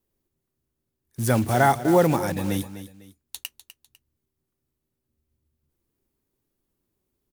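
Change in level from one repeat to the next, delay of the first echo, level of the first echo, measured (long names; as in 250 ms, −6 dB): −9.5 dB, 250 ms, −13.0 dB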